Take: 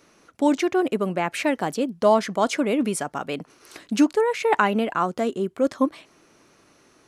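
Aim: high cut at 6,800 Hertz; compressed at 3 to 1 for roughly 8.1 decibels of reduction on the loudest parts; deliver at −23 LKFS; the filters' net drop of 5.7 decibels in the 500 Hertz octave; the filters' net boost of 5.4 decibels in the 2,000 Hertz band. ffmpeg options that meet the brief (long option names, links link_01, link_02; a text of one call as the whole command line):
ffmpeg -i in.wav -af "lowpass=6800,equalizer=frequency=500:width_type=o:gain=-8,equalizer=frequency=2000:width_type=o:gain=7.5,acompressor=threshold=-26dB:ratio=3,volume=6.5dB" out.wav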